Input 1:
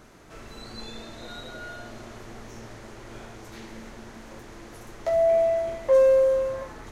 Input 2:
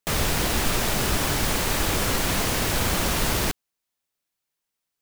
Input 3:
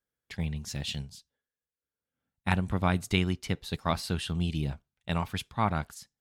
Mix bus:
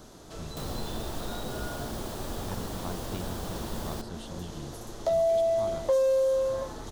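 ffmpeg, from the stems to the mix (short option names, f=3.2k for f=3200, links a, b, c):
-filter_complex "[0:a]volume=2.5dB[a];[1:a]adelay=500,volume=-11dB[b];[2:a]volume=-11.5dB[c];[a][b][c]amix=inputs=3:normalize=0,firequalizer=gain_entry='entry(730,0);entry(2200,-11);entry(3400,3)':delay=0.05:min_phase=1,acrossover=split=610|2200[d][e][f];[d]acompressor=threshold=-29dB:ratio=4[g];[e]acompressor=threshold=-30dB:ratio=4[h];[f]acompressor=threshold=-45dB:ratio=4[i];[g][h][i]amix=inputs=3:normalize=0"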